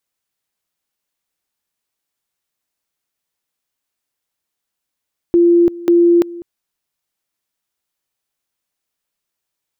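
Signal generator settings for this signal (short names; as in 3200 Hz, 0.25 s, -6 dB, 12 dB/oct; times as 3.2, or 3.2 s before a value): two-level tone 344 Hz -7 dBFS, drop 19.5 dB, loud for 0.34 s, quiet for 0.20 s, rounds 2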